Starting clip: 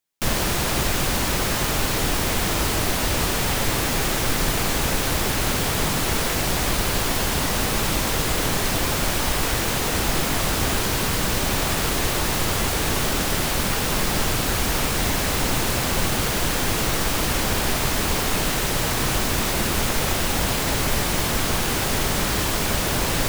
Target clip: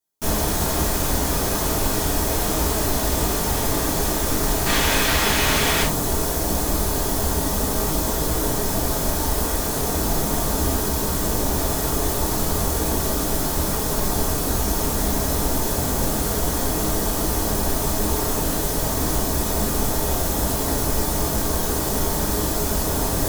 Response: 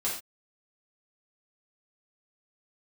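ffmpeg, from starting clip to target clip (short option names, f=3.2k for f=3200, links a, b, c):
-filter_complex "[0:a]asetnsamples=n=441:p=0,asendcmd='4.66 equalizer g 4;5.83 equalizer g -14',equalizer=f=2.4k:w=0.75:g=-10[a];[1:a]atrim=start_sample=2205,asetrate=70560,aresample=44100[b];[a][b]afir=irnorm=-1:irlink=0,volume=1dB"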